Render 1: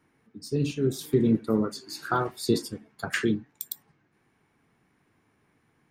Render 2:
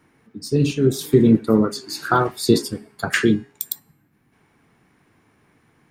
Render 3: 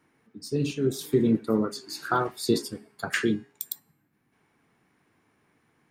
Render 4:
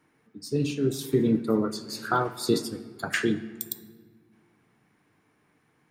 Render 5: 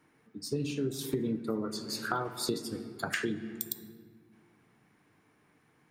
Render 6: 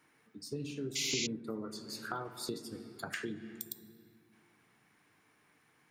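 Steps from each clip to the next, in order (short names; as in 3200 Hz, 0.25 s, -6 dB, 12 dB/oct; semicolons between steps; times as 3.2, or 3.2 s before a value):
de-hum 410 Hz, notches 32; spectral gain 3.79–4.33, 320–10000 Hz -7 dB; gain +8.5 dB
low shelf 120 Hz -7.5 dB; gain -7 dB
shoebox room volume 2000 m³, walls mixed, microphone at 0.46 m
compressor 6:1, threshold -29 dBFS, peak gain reduction 11.5 dB
painted sound noise, 0.95–1.27, 2000–7300 Hz -28 dBFS; mismatched tape noise reduction encoder only; gain -7 dB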